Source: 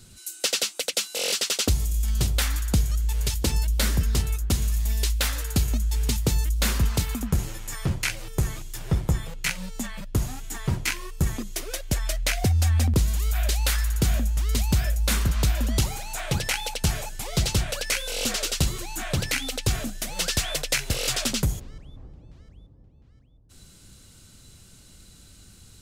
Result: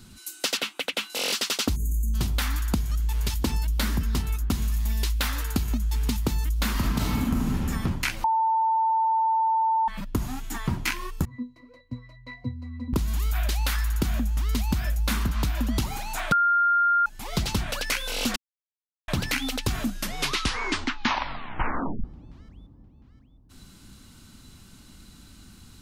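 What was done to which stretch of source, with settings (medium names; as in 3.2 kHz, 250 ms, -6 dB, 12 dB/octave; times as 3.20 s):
0.57–1.10 s: resonant high shelf 3.9 kHz -8 dB, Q 1.5
1.76–2.14 s: spectral selection erased 520–6100 Hz
6.73–7.55 s: reverb throw, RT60 1.4 s, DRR -6 dB
8.24–9.88 s: bleep 893 Hz -19.5 dBFS
11.25–12.93 s: pitch-class resonator B, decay 0.22 s
16.32–17.06 s: bleep 1.4 kHz -7 dBFS
18.36–19.08 s: mute
19.85 s: tape stop 2.19 s
whole clip: graphic EQ 125/250/500/1000/8000 Hz -3/+8/-7/+6/-6 dB; compression, threshold -23 dBFS; trim +1.5 dB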